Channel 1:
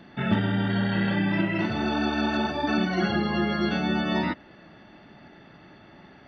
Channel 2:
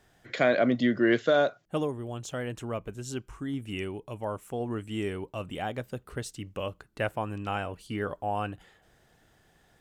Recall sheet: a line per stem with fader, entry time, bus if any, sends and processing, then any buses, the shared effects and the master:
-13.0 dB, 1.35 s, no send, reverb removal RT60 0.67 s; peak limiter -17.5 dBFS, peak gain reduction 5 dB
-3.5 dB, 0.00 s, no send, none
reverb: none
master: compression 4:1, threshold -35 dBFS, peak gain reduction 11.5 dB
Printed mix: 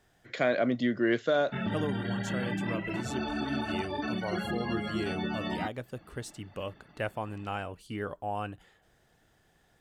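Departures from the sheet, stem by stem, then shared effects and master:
stem 1 -13.0 dB -> -6.0 dB; master: missing compression 4:1, threshold -35 dBFS, peak gain reduction 11.5 dB

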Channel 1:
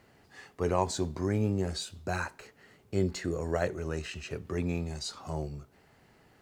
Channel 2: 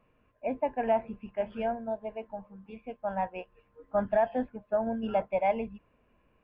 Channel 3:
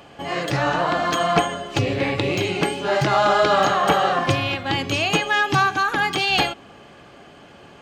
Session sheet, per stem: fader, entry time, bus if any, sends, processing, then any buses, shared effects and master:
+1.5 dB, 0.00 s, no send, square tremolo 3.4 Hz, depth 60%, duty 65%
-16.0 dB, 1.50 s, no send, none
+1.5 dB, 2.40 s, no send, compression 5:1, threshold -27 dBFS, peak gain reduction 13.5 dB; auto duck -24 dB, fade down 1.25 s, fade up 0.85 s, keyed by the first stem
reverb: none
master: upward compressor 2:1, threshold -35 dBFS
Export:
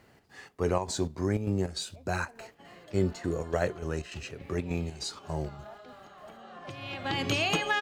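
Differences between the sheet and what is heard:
stem 2 -16.0 dB -> -24.0 dB; master: missing upward compressor 2:1, threshold -35 dBFS

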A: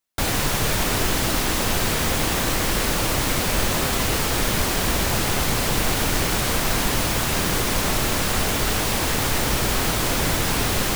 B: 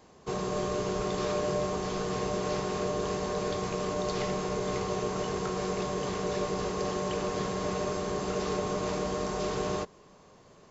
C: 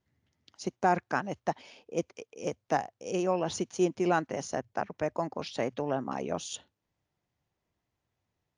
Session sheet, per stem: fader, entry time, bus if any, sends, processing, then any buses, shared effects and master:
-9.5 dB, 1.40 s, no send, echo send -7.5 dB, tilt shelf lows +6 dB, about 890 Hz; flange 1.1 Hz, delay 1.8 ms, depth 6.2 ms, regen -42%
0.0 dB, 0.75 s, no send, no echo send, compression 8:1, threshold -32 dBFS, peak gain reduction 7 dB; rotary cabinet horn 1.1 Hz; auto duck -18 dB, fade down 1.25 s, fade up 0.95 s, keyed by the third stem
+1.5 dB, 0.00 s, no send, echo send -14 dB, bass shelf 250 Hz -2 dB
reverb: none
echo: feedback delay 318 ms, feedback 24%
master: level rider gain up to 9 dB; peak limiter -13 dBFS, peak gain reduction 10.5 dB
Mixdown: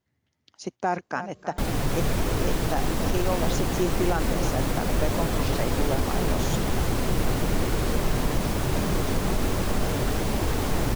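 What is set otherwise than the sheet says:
stem A -9.5 dB -> -2.5 dB; stem B: entry 0.75 s -> 1.00 s; master: missing level rider gain up to 9 dB

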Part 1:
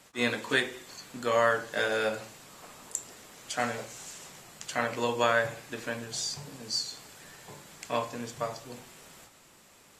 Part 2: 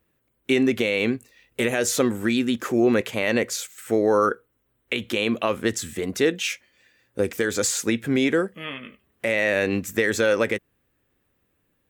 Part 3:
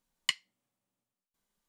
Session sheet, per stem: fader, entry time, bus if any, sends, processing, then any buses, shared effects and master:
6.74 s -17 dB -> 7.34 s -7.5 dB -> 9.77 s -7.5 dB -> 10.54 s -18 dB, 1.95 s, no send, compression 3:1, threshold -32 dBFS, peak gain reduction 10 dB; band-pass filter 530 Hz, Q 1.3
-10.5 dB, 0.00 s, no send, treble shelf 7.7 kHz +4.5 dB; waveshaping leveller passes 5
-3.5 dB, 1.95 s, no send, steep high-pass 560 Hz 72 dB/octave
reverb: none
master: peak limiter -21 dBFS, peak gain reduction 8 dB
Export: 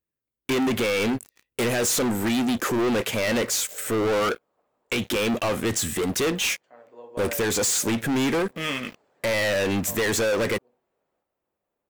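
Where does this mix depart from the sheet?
stem 1: missing compression 3:1, threshold -32 dBFS, peak gain reduction 10 dB; stem 3: muted; master: missing peak limiter -21 dBFS, peak gain reduction 8 dB

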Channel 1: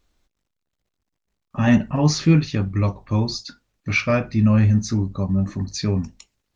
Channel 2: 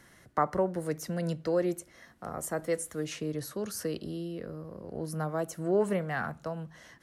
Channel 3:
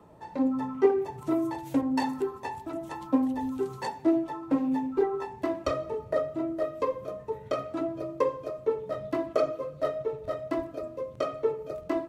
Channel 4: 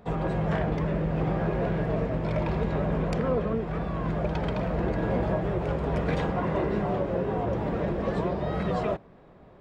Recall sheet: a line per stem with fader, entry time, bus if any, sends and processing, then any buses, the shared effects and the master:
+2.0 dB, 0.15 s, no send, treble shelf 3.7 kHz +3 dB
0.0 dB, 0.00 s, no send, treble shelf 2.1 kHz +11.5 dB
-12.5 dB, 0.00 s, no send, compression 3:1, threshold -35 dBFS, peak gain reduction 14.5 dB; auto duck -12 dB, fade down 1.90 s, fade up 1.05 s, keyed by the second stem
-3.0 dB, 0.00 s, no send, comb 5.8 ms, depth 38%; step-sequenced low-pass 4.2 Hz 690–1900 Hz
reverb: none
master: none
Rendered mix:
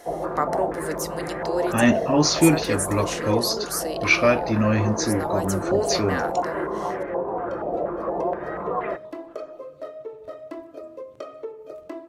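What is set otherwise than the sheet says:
stem 3 -12.5 dB -> -0.5 dB; master: extra resonant low shelf 240 Hz -8.5 dB, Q 1.5

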